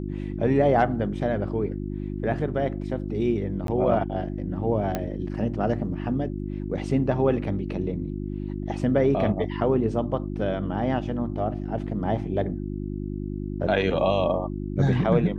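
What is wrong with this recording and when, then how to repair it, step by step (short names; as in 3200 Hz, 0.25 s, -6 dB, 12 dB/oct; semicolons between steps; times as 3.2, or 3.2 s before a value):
hum 50 Hz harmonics 7 -31 dBFS
3.67–3.68 gap 12 ms
4.95 pop -13 dBFS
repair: de-click; de-hum 50 Hz, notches 7; interpolate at 3.67, 12 ms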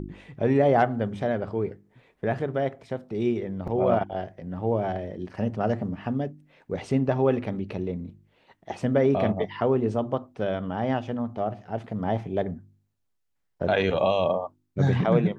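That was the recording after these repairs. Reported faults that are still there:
none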